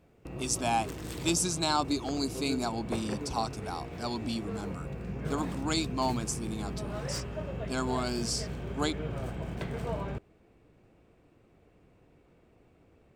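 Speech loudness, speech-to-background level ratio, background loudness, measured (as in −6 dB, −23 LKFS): −33.0 LKFS, 5.5 dB, −38.5 LKFS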